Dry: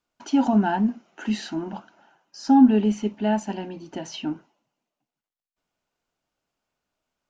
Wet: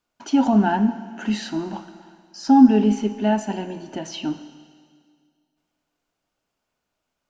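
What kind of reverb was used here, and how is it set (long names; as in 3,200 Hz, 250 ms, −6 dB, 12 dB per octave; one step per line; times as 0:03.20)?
four-comb reverb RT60 2 s, combs from 27 ms, DRR 11.5 dB
level +2.5 dB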